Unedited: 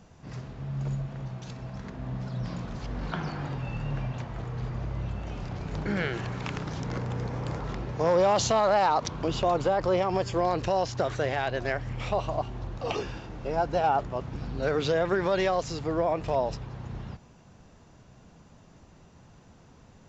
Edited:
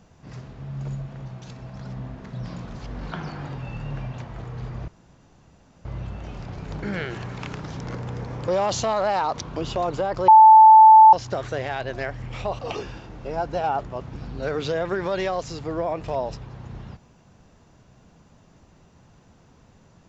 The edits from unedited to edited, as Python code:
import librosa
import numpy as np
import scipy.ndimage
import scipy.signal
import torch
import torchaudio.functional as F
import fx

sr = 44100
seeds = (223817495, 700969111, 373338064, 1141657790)

y = fx.edit(x, sr, fx.reverse_span(start_s=1.81, length_s=0.52),
    fx.insert_room_tone(at_s=4.88, length_s=0.97),
    fx.cut(start_s=7.51, length_s=0.64),
    fx.bleep(start_s=9.95, length_s=0.85, hz=877.0, db=-6.0),
    fx.cut(start_s=12.26, length_s=0.53), tone=tone)